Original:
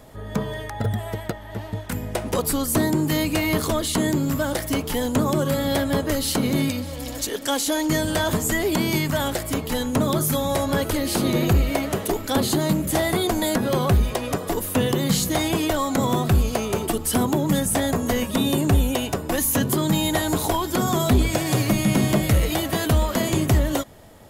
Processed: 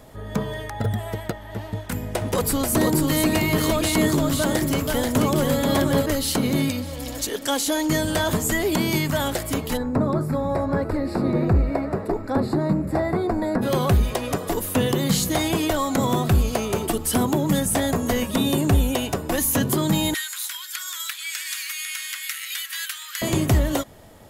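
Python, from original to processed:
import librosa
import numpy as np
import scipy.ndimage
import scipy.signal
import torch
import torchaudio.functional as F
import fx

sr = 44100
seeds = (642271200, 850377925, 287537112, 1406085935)

y = fx.echo_single(x, sr, ms=484, db=-3.0, at=(1.7, 6.06))
y = fx.moving_average(y, sr, points=14, at=(9.76, 13.61), fade=0.02)
y = fx.steep_highpass(y, sr, hz=1500.0, slope=36, at=(20.14, 23.22))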